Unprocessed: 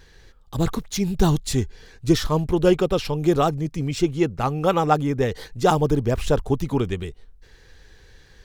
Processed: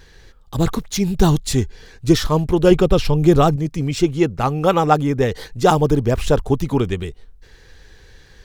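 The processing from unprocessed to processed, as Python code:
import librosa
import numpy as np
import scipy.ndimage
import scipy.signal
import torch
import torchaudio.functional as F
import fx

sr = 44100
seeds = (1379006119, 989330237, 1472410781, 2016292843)

y = fx.low_shelf(x, sr, hz=140.0, db=11.0, at=(2.71, 3.56))
y = F.gain(torch.from_numpy(y), 4.0).numpy()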